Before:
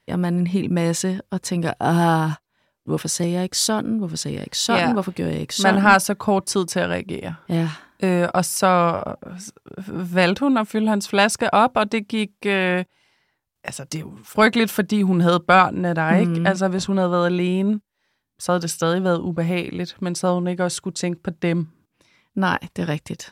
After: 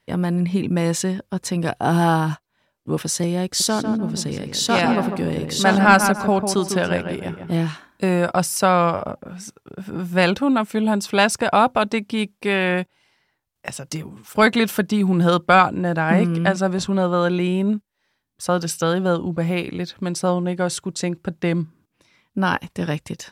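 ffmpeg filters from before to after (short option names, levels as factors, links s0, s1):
-filter_complex "[0:a]asettb=1/sr,asplit=3[s0][s1][s2];[s0]atrim=end=3.454[s3];[s1]atrim=start=3.45:end=7.55,asetpts=PTS-STARTPTS,afade=t=in:d=0.004:c=qsin,afade=t=out:st=4.096:d=0.004:c=qsin,asplit=2[s4][s5];[s5]adelay=149,lowpass=f=2000:p=1,volume=0.473,asplit=2[s6][s7];[s7]adelay=149,lowpass=f=2000:p=1,volume=0.35,asplit=2[s8][s9];[s9]adelay=149,lowpass=f=2000:p=1,volume=0.35,asplit=2[s10][s11];[s11]adelay=149,lowpass=f=2000:p=1,volume=0.35[s12];[s4][s6][s8][s10][s12]amix=inputs=5:normalize=0,atrim=end_sample=180810[s13];[s2]atrim=start=7.546[s14];[s3][s13]acrossfade=d=0.004:c1=hsin:c2=qsin[s15];[s15][s14]acrossfade=d=0.004:c1=qsin:c2=hsin"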